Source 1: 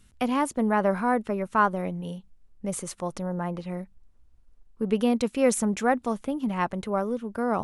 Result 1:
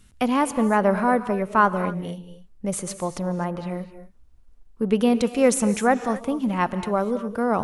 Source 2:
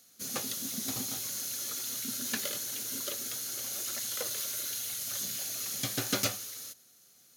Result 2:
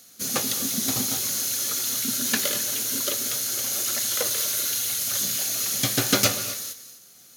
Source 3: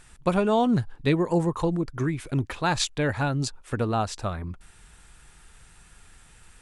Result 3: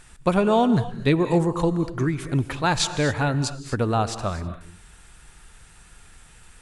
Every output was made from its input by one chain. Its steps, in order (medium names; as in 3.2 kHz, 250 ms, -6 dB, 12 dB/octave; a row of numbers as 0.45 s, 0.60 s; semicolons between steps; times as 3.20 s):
gated-style reverb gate 280 ms rising, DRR 11.5 dB; normalise loudness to -23 LUFS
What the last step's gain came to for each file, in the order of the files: +4.0 dB, +9.5 dB, +3.0 dB